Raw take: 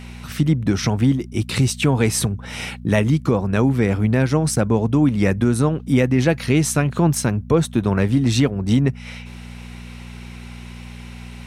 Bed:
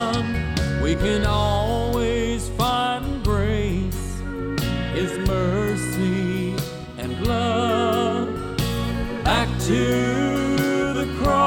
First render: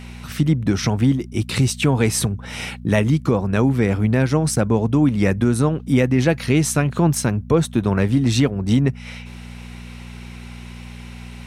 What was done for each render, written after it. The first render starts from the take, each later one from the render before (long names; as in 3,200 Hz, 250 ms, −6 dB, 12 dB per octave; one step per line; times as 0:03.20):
no processing that can be heard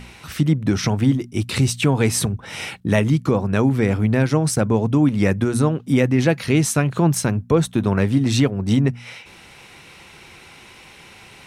hum removal 60 Hz, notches 4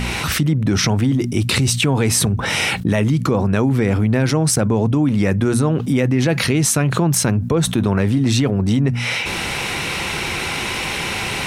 brickwall limiter −9.5 dBFS, peak gain reduction 6 dB
envelope flattener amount 70%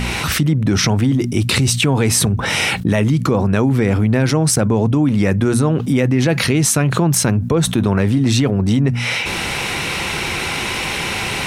level +1.5 dB